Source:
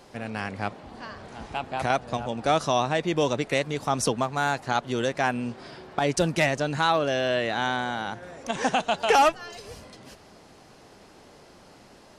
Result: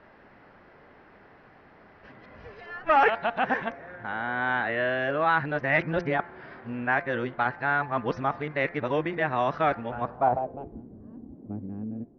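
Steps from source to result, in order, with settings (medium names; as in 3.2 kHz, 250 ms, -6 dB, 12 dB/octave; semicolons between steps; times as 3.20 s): reverse the whole clip; steep low-pass 5.9 kHz 72 dB/octave; de-hum 172.6 Hz, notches 14; low-pass sweep 1.8 kHz -> 280 Hz, 9.91–10.83 s; trim -3.5 dB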